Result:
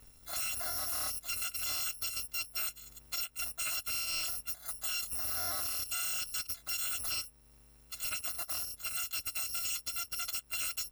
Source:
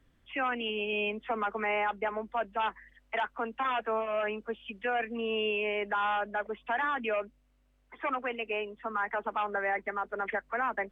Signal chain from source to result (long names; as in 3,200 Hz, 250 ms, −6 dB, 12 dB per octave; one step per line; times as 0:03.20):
samples in bit-reversed order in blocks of 256 samples
downward compressor 2.5 to 1, threshold −45 dBFS, peak gain reduction 12 dB
soft clipping −39.5 dBFS, distortion −14 dB
level +9 dB